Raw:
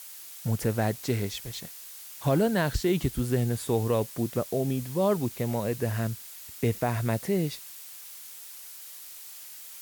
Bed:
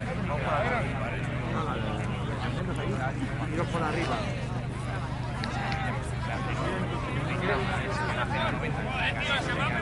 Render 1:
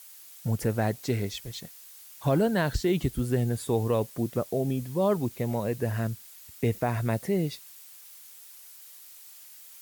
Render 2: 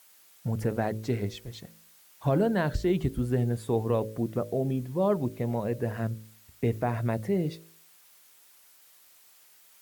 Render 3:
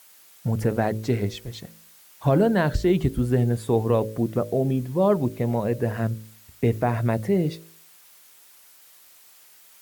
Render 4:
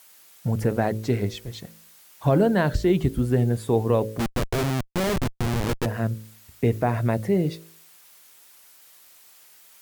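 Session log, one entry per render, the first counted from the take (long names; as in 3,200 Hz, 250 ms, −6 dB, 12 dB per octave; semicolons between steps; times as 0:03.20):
broadband denoise 6 dB, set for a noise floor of −45 dBFS
high-shelf EQ 2,900 Hz −9.5 dB; hum removal 54.61 Hz, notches 11
level +5.5 dB
0:04.19–0:05.86: comparator with hysteresis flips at −23 dBFS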